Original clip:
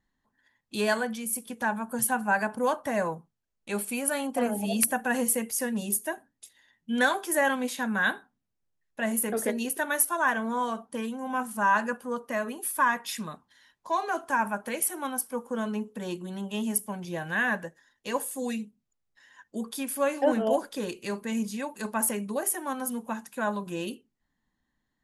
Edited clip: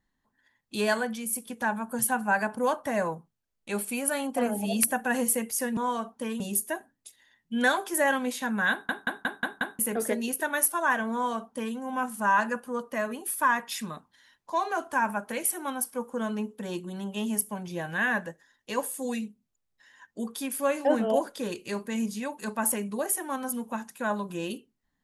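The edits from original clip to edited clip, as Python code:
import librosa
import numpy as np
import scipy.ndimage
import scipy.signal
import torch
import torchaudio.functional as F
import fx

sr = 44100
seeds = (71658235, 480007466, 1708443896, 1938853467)

y = fx.edit(x, sr, fx.stutter_over(start_s=8.08, slice_s=0.18, count=6),
    fx.duplicate(start_s=10.5, length_s=0.63, to_s=5.77), tone=tone)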